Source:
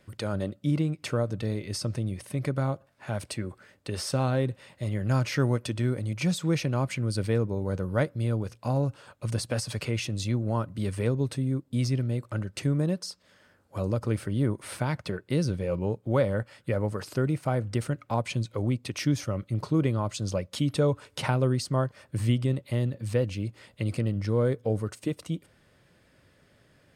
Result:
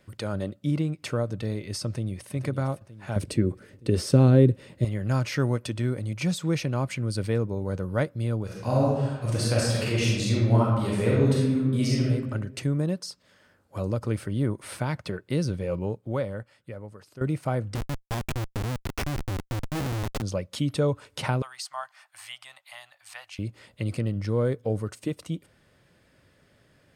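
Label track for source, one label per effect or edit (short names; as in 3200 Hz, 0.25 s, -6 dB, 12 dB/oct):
1.890000	2.330000	echo throw 0.46 s, feedback 50%, level -10.5 dB
3.160000	4.850000	resonant low shelf 550 Hz +9.5 dB, Q 1.5
8.440000	12.050000	reverb throw, RT60 1.2 s, DRR -5.5 dB
15.780000	17.210000	fade out quadratic, to -15 dB
17.750000	20.220000	Schmitt trigger flips at -28.5 dBFS
21.420000	23.390000	elliptic high-pass 730 Hz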